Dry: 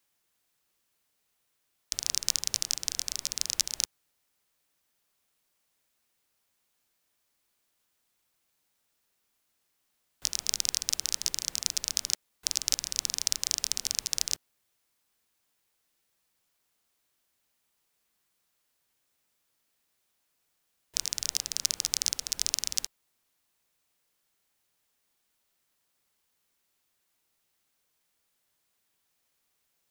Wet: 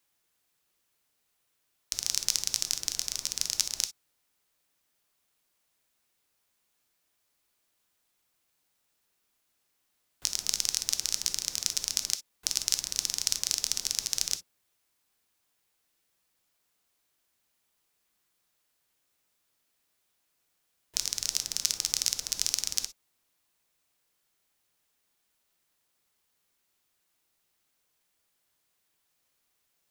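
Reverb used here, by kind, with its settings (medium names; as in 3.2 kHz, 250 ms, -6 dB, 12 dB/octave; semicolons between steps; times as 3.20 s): gated-style reverb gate 80 ms flat, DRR 11 dB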